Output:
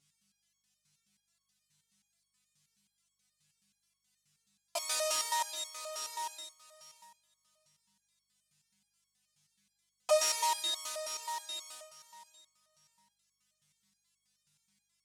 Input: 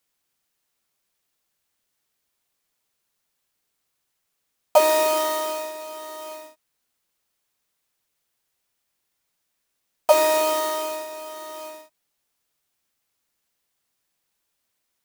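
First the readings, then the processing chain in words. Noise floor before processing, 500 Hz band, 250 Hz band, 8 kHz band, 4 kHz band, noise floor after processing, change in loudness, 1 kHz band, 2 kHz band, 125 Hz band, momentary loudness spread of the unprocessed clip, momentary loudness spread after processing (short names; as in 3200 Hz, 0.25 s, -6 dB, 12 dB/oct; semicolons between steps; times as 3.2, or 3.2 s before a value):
-77 dBFS, -15.5 dB, under -25 dB, -3.0 dB, -3.0 dB, -83 dBFS, -12.5 dB, -11.5 dB, -11.0 dB, n/a, 19 LU, 18 LU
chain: in parallel at +2 dB: compressor, threshold -32 dBFS, peak gain reduction 20.5 dB; on the sum: buzz 50 Hz, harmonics 4, -49 dBFS -2 dB/oct; weighting filter ITU-R 468; on a send: thinning echo 0.643 s, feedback 18%, high-pass 500 Hz, level -15 dB; on the sum: stepped resonator 9.4 Hz 140–1100 Hz; gain -1.5 dB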